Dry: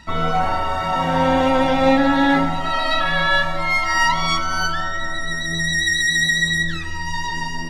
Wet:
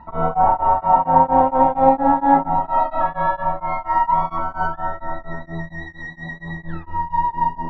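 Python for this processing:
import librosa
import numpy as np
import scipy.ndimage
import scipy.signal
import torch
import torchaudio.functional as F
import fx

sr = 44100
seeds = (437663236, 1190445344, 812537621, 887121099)

p1 = fx.rider(x, sr, range_db=4, speed_s=0.5)
p2 = x + (p1 * librosa.db_to_amplitude(-2.0))
p3 = fx.lowpass_res(p2, sr, hz=900.0, q=4.1)
p4 = p3 * np.abs(np.cos(np.pi * 4.3 * np.arange(len(p3)) / sr))
y = p4 * librosa.db_to_amplitude(-6.0)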